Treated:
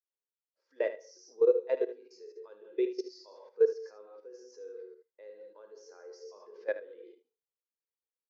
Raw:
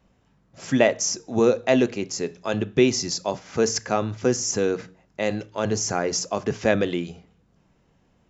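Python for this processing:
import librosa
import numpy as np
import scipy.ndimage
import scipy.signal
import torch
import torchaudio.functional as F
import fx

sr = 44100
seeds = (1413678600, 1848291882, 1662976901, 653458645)

y = fx.rev_gated(x, sr, seeds[0], gate_ms=220, shape='flat', drr_db=4.5)
y = fx.level_steps(y, sr, step_db=17)
y = fx.cabinet(y, sr, low_hz=360.0, low_slope=24, high_hz=5700.0, hz=(480.0, 690.0, 990.0, 1600.0, 2800.0, 4500.0), db=(7, -9, 4, 3, -4, 6))
y = fx.room_early_taps(y, sr, ms=(54, 76), db=(-15.5, -9.5))
y = fx.spectral_expand(y, sr, expansion=1.5)
y = y * librosa.db_to_amplitude(-6.5)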